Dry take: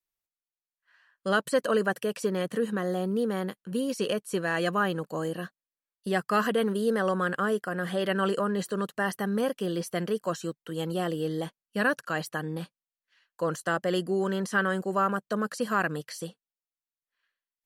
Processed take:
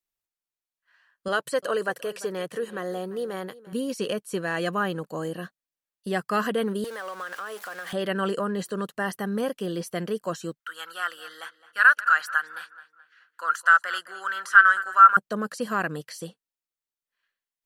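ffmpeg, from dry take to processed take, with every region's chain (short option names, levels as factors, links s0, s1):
-filter_complex "[0:a]asettb=1/sr,asplit=3[s0][s1][s2];[s0]atrim=end=1.284[s3];[s1]atrim=start=1.28:end=3.73,asetpts=PTS-STARTPTS,afade=t=in:d=0.004:c=qsin,afade=t=out:st=2.446:d=0.004:c=qsin,highpass=84,equalizer=f=220:w=2.1:g=-11,aecho=1:1:345:0.119,atrim=end_sample=108045[s4];[s2]atrim=start=3.726[s5];[s3][s4]acrossfade=d=0.004:c1=hsin:c2=qsin[s6];[s6][s5]acrossfade=d=0.004:c1=qsin:c2=hsin,asettb=1/sr,asplit=3[s7][s8][s9];[s7]atrim=end=6.844[s10];[s8]atrim=start=6.84:end=7.93,asetpts=PTS-STARTPTS,afade=t=in:d=0.004:c=qsin,afade=t=out:st=1.086:d=0.004:c=qsin,aeval=exprs='val(0)+0.5*0.0178*sgn(val(0))':c=same,highpass=740,acompressor=threshold=0.0251:ratio=3:attack=3.2:release=140:knee=1:detection=peak[s11];[s9]atrim=start=7.926[s12];[s10][s11]acrossfade=d=0.004:c1=hsin:c2=qsin[s13];[s13][s12]acrossfade=d=0.004:c1=qsin:c2=hsin,asettb=1/sr,asplit=3[s14][s15][s16];[s14]atrim=end=10.604[s17];[s15]atrim=start=10.6:end=15.17,asetpts=PTS-STARTPTS,afade=t=in:d=0.004:c=qsin,afade=t=out:st=4.566:d=0.004:c=qsin,highpass=f=1400:t=q:w=8.4,asplit=2[s18][s19];[s19]adelay=214,lowpass=f=4400:p=1,volume=0.15,asplit=2[s20][s21];[s21]adelay=214,lowpass=f=4400:p=1,volume=0.42,asplit=2[s22][s23];[s23]adelay=214,lowpass=f=4400:p=1,volume=0.42,asplit=2[s24][s25];[s25]adelay=214,lowpass=f=4400:p=1,volume=0.42[s26];[s18][s20][s22][s24][s26]amix=inputs=5:normalize=0,atrim=end_sample=201537[s27];[s16]atrim=start=15.166[s28];[s17][s27]acrossfade=d=0.004:c1=hsin:c2=qsin[s29];[s29][s28]acrossfade=d=0.004:c1=qsin:c2=hsin"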